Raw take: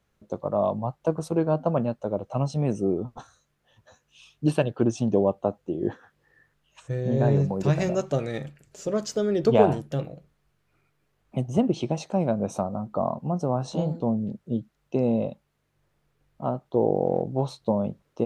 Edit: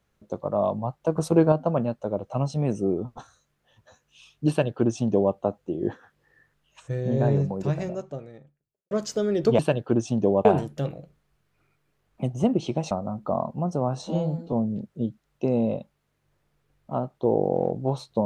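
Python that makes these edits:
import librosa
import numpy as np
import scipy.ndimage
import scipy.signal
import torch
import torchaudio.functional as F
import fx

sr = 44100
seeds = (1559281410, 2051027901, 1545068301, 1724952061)

y = fx.studio_fade_out(x, sr, start_s=6.94, length_s=1.97)
y = fx.edit(y, sr, fx.clip_gain(start_s=1.16, length_s=0.36, db=5.5),
    fx.duplicate(start_s=4.49, length_s=0.86, to_s=9.59),
    fx.cut(start_s=12.05, length_s=0.54),
    fx.stretch_span(start_s=13.7, length_s=0.34, factor=1.5), tone=tone)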